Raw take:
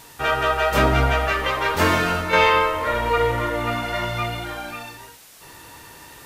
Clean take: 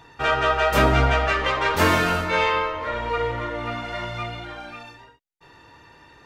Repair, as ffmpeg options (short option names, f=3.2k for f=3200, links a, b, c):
-af "afwtdn=0.005,asetnsamples=n=441:p=0,asendcmd='2.33 volume volume -5dB',volume=0dB"